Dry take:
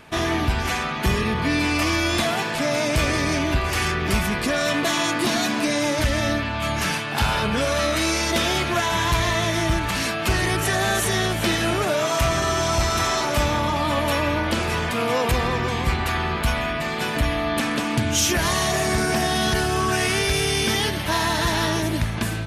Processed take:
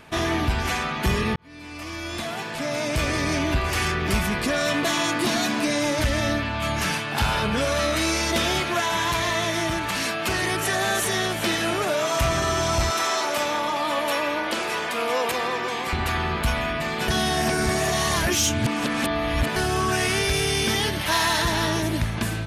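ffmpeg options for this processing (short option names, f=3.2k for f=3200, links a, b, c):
-filter_complex "[0:a]asettb=1/sr,asplit=3[a][b][c];[a]atrim=end=8.604[d];[b]atrim=start=8.6:end=12.16,asetpts=PTS-STARTPTS,afade=t=in:d=0.004:c=qsin,afade=t=out:st=3.556:d=0.004:c=qsin,highpass=f=210:p=1[e];[c]atrim=start=12.156[f];[d][e]acrossfade=d=0.004:c1=hsin:c2=qsin[g];[g][f]acrossfade=d=0.004:c1=qsin:c2=hsin,asettb=1/sr,asplit=3[h][i][j];[h]atrim=end=12.914[k];[i]atrim=start=12.91:end=15.93,asetpts=PTS-STARTPTS,afade=t=in:d=0.004:c=qsin,afade=t=out:st=3.016:d=0.004:c=qsin,highpass=350[l];[j]atrim=start=15.926[m];[k][l]acrossfade=d=0.004:c1=hsin:c2=qsin[n];[n][m]acrossfade=d=0.004:c1=qsin:c2=hsin,asettb=1/sr,asplit=3[o][p][q];[o]atrim=end=21.014[r];[p]atrim=start=21.01:end=21.42,asetpts=PTS-STARTPTS,afade=t=in:d=0.004:c=qsin,afade=t=out:st=0.406:d=0.004:c=qsin,tiltshelf=f=640:g=-4.5[s];[q]atrim=start=21.416[t];[r][s]acrossfade=d=0.004:c1=hsin:c2=qsin[u];[u][t]acrossfade=d=0.004:c1=qsin:c2=hsin,asplit=4[v][w][x][y];[v]atrim=end=1.36,asetpts=PTS-STARTPTS,afade=t=out:st=1.356:d=0.004:c=hsin[z];[w]atrim=start=1.36:end=17.082,asetpts=PTS-STARTPTS,afade=t=in:d=2.09[aa];[x]atrim=start=17.078:end=19.562,asetpts=PTS-STARTPTS,areverse[ab];[y]atrim=start=19.558[ac];[z][aa]concat=n=2:v=0:a=1[ad];[ad][ab]acrossfade=d=0.004:c1=hsin:c2=hsin[ae];[ae][ac]acrossfade=d=0.004:c1=hsin:c2=hsin,acontrast=86,volume=-8dB"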